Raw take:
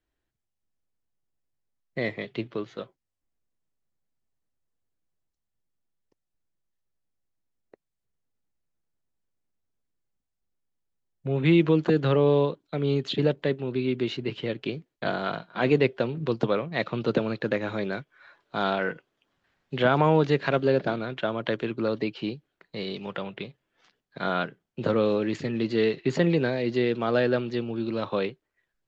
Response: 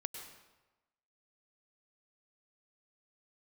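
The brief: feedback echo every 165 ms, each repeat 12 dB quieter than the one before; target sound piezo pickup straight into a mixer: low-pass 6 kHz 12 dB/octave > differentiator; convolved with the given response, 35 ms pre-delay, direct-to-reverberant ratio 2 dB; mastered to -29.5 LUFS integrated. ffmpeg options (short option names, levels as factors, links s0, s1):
-filter_complex "[0:a]aecho=1:1:165|330|495:0.251|0.0628|0.0157,asplit=2[s0][s1];[1:a]atrim=start_sample=2205,adelay=35[s2];[s1][s2]afir=irnorm=-1:irlink=0,volume=0.891[s3];[s0][s3]amix=inputs=2:normalize=0,lowpass=6000,aderivative,volume=4.47"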